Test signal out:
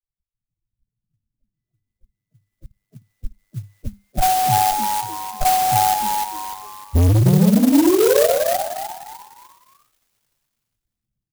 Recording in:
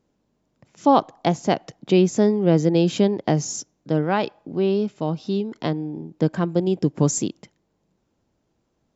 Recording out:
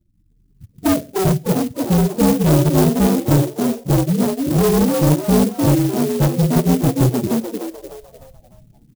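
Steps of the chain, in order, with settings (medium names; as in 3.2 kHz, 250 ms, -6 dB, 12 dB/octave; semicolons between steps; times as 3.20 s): frequency axis rescaled in octaves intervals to 121%; elliptic low-pass 640 Hz, stop band 40 dB; tilt EQ -4 dB/octave; on a send: flutter echo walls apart 9.6 m, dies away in 0.36 s; on the sum: level rider gain up to 11.5 dB; peaking EQ 240 Hz -5.5 dB 0.79 oct; transient shaper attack +8 dB, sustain -10 dB; spectral gate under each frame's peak -15 dB strong; band-stop 400 Hz, Q 12; hard clipper -13.5 dBFS; frequency-shifting echo 301 ms, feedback 36%, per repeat +100 Hz, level -4 dB; sampling jitter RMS 0.088 ms; trim +1.5 dB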